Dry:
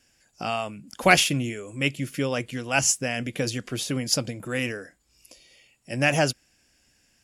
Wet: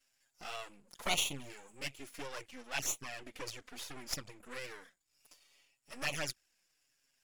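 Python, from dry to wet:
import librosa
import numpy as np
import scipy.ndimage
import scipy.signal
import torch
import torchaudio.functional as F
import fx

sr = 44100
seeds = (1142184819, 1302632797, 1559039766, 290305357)

y = np.maximum(x, 0.0)
y = fx.low_shelf(y, sr, hz=500.0, db=-11.5)
y = fx.env_flanger(y, sr, rest_ms=7.7, full_db=-24.5)
y = fx.high_shelf(y, sr, hz=6400.0, db=-5.0, at=(2.48, 4.65))
y = y * 10.0 ** (-4.0 / 20.0)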